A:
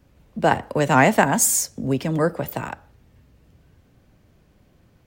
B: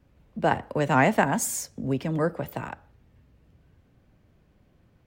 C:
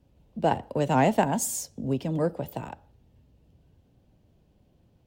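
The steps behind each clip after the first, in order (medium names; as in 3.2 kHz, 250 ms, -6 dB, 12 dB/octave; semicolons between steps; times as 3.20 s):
tone controls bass +1 dB, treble -6 dB; trim -5 dB
high-order bell 1.6 kHz -8.5 dB 1.3 oct; Chebyshev shaper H 7 -35 dB, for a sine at -8 dBFS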